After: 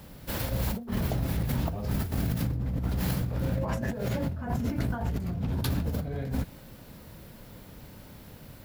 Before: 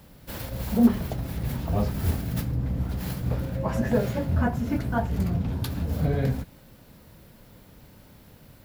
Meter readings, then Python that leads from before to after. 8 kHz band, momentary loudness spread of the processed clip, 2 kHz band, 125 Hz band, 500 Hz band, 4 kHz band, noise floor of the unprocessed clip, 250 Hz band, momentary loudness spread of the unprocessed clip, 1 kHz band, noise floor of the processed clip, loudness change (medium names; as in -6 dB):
+1.0 dB, 18 LU, -2.5 dB, -2.5 dB, -5.5 dB, +1.0 dB, -52 dBFS, -6.0 dB, 9 LU, -4.5 dB, -49 dBFS, -4.0 dB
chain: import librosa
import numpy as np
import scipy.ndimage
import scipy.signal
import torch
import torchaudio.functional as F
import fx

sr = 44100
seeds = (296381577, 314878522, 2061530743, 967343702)

y = fx.over_compress(x, sr, threshold_db=-30.0, ratio=-1.0)